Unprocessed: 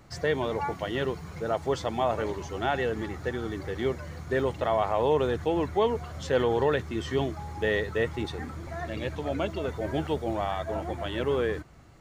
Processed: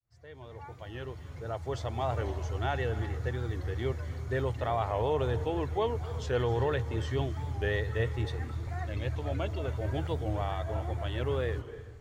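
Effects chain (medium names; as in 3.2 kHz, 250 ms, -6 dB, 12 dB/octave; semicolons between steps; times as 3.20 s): fade-in on the opening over 2.30 s; resonant low shelf 140 Hz +7 dB, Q 3; reverberation RT60 0.90 s, pre-delay 228 ms, DRR 14 dB; warped record 45 rpm, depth 100 cents; trim -5 dB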